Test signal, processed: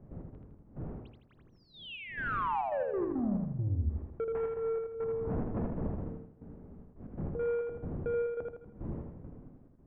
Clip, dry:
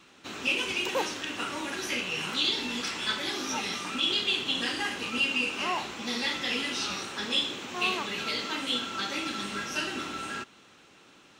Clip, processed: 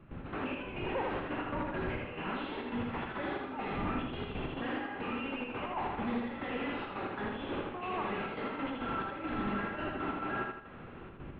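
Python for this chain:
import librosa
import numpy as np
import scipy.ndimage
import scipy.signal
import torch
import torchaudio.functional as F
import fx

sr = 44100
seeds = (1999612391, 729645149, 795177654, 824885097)

p1 = fx.dmg_wind(x, sr, seeds[0], corner_hz=220.0, level_db=-45.0)
p2 = fx.dynamic_eq(p1, sr, hz=740.0, q=1.5, threshold_db=-46.0, ratio=4.0, max_db=4)
p3 = fx.over_compress(p2, sr, threshold_db=-36.0, ratio=-1.0)
p4 = p2 + (p3 * 10.0 ** (2.0 / 20.0))
p5 = fx.step_gate(p4, sr, bpm=138, pattern='.x.xx..xxxx.x', floor_db=-12.0, edge_ms=4.5)
p6 = 10.0 ** (-28.5 / 20.0) * np.tanh(p5 / 10.0 ** (-28.5 / 20.0))
p7 = scipy.ndimage.gaussian_filter1d(p6, 4.3, mode='constant')
p8 = p7 + fx.echo_feedback(p7, sr, ms=80, feedback_pct=44, wet_db=-3.5, dry=0)
y = p8 * 10.0 ** (-1.5 / 20.0)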